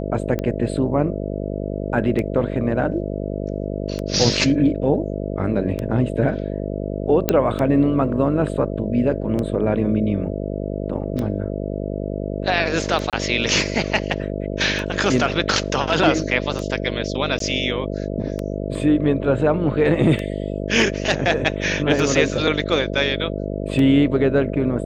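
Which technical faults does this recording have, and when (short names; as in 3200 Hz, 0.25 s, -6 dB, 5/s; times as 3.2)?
buzz 50 Hz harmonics 13 -26 dBFS
tick 33 1/3 rpm -13 dBFS
7.29 pop -2 dBFS
13.1–13.13 gap 27 ms
17.39–17.4 gap 13 ms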